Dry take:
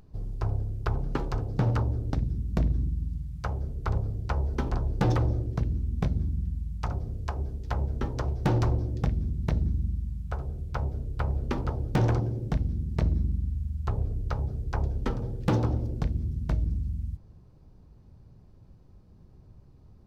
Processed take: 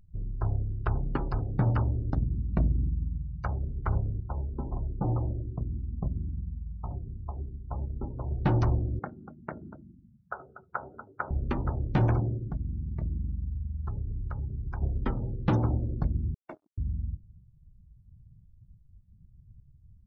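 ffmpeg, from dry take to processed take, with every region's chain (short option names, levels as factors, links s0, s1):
-filter_complex "[0:a]asettb=1/sr,asplit=3[s0][s1][s2];[s0]atrim=end=4.204[s3];[s1]atrim=start=4.2:end=8.31,asetpts=PTS-STARTPTS,afade=t=in:d=0.004:c=qsin,afade=t=out:st=4.106:d=0.004:c=qsin,lowpass=f=1100:w=0.5412,lowpass=f=1100:w=1.3066,flanger=delay=0.4:depth=8.7:regen=85:speed=1.6:shape=triangular[s4];[s2]atrim=start=8.306[s5];[s3][s4]acrossfade=d=0.004:c1=hsin:c2=qsin[s6];[s6][s5]acrossfade=d=0.004:c1=qsin:c2=hsin,asettb=1/sr,asplit=3[s7][s8][s9];[s7]atrim=end=8.994[s10];[s8]atrim=start=8.99:end=11.31,asetpts=PTS-STARTPTS,afade=t=in:d=0.004:c=qsin,afade=t=out:st=2.316:d=0.004:c=qsin,highpass=340,lowpass=2100,equalizer=f=1400:w=4:g=8,aecho=1:1:240:0.282,atrim=end_sample=102312[s11];[s9]atrim=start=11.306[s12];[s10][s11]acrossfade=d=0.004:c1=hsin:c2=qsin[s13];[s13][s12]acrossfade=d=0.004:c1=qsin:c2=hsin,asettb=1/sr,asplit=3[s14][s15][s16];[s14]atrim=end=12.374[s17];[s15]atrim=start=12.37:end=14.82,asetpts=PTS-STARTPTS,afade=t=in:d=0.004:c=qsin,afade=t=out:st=2.446:d=0.004:c=qsin,acompressor=threshold=0.0316:ratio=2.5:attack=3.2:release=140:knee=1:detection=peak,equalizer=f=620:w=0.62:g=-4.5[s18];[s16]atrim=start=14.816[s19];[s17][s18]acrossfade=d=0.004:c1=hsin:c2=qsin[s20];[s20][s19]acrossfade=d=0.004:c1=qsin:c2=hsin,asettb=1/sr,asplit=3[s21][s22][s23];[s21]atrim=end=16.344[s24];[s22]atrim=start=16.34:end=16.78,asetpts=PTS-STARTPTS,afade=t=in:d=0.004:c=qsin,afade=t=out:st=0.436:d=0.004:c=qsin,highpass=f=320:w=0.5412,highpass=f=320:w=1.3066,acrusher=bits=6:mix=0:aa=0.5,asoftclip=type=hard:threshold=0.0316[s25];[s23]atrim=start=16.776[s26];[s24][s25]acrossfade=d=0.004:c1=hsin:c2=qsin[s27];[s27][s26]acrossfade=d=0.004:c1=qsin:c2=hsin,afftdn=nr=30:nf=-42,equalizer=f=470:t=o:w=0.27:g=-7"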